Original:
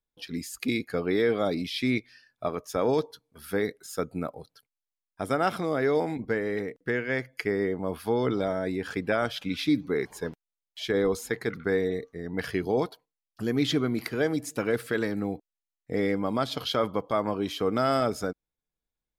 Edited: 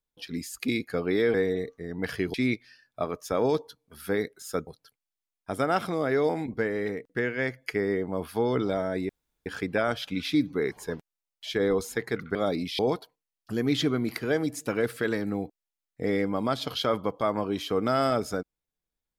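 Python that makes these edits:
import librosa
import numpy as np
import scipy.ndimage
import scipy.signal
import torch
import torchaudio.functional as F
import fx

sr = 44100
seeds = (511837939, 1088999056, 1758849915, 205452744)

y = fx.edit(x, sr, fx.swap(start_s=1.34, length_s=0.44, other_s=11.69, other_length_s=1.0),
    fx.cut(start_s=4.11, length_s=0.27),
    fx.insert_room_tone(at_s=8.8, length_s=0.37), tone=tone)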